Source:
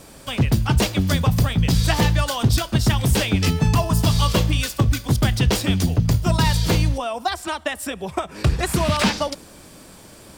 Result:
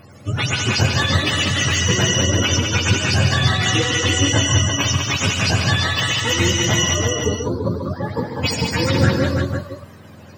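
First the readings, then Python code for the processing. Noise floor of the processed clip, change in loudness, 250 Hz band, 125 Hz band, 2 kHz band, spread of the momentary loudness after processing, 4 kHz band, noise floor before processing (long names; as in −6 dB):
−41 dBFS, +2.5 dB, 0.0 dB, 0.0 dB, +7.5 dB, 7 LU, +7.5 dB, −45 dBFS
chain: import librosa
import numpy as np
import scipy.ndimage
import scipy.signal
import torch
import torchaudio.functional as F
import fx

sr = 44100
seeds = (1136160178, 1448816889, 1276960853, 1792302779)

y = fx.octave_mirror(x, sr, pivot_hz=570.0)
y = fx.echo_multitap(y, sr, ms=(89, 139, 200, 336, 498), db=(-14.0, -8.5, -6.0, -6.0, -10.0))
y = F.gain(torch.from_numpy(y), 2.0).numpy()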